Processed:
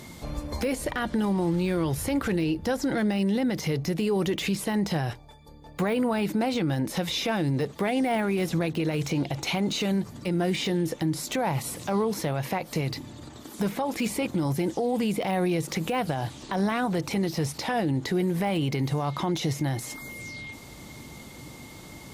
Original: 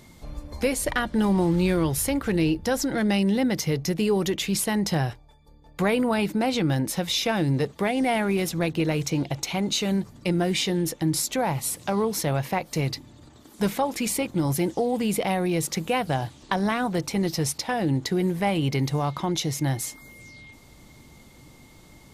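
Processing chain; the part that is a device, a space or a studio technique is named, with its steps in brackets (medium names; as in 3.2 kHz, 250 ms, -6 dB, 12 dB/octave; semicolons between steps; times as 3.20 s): podcast mastering chain (high-pass 82 Hz 6 dB/octave; de-esser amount 85%; compression 4:1, threshold -28 dBFS, peak gain reduction 8 dB; peak limiter -26 dBFS, peak gain reduction 10 dB; trim +8 dB; MP3 96 kbps 44.1 kHz)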